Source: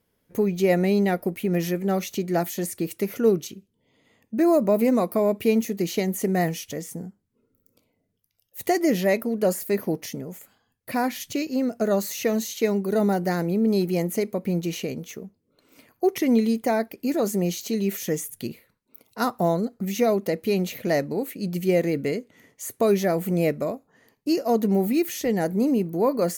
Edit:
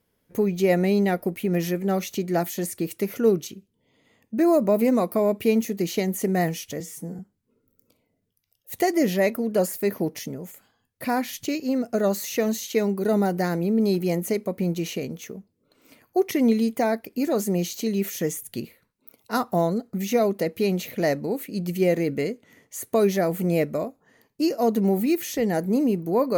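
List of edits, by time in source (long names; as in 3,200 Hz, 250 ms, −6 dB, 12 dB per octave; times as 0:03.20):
0:06.80–0:07.06: time-stretch 1.5×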